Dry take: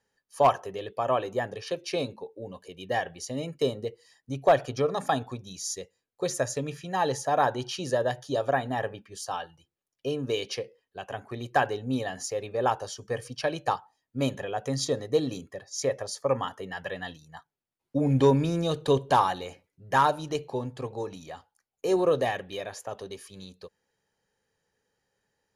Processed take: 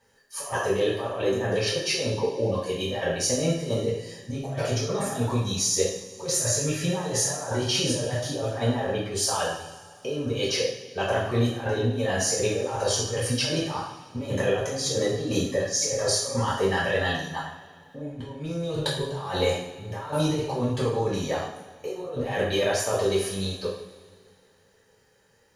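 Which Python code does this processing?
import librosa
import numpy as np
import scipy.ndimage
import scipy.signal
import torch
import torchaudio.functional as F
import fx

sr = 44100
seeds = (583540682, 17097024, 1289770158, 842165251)

y = fx.over_compress(x, sr, threshold_db=-36.0, ratio=-1.0)
y = fx.rev_double_slope(y, sr, seeds[0], early_s=0.63, late_s=2.4, knee_db=-17, drr_db=-8.0)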